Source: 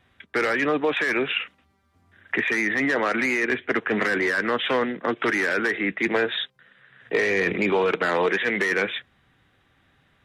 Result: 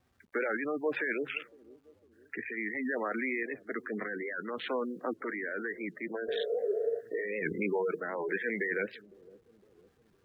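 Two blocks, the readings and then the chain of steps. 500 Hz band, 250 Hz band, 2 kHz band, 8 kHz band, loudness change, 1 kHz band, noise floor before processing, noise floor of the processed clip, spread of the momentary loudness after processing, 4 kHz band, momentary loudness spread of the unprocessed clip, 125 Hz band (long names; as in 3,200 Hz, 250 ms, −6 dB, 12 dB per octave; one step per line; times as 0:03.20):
−8.5 dB, −10.0 dB, −12.5 dB, below −30 dB, −11.0 dB, −13.0 dB, −64 dBFS, −68 dBFS, 7 LU, −17.0 dB, 6 LU, −12.0 dB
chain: adaptive Wiener filter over 15 samples
gate on every frequency bin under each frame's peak −15 dB strong
mains-hum notches 50/100/150 Hz
healed spectral selection 0:06.29–0:06.97, 380–1,400 Hz before
bit reduction 11 bits
sample-and-hold tremolo
bucket-brigade delay 508 ms, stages 2,048, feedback 46%, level −21 dB
wow of a warped record 78 rpm, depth 160 cents
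level −6.5 dB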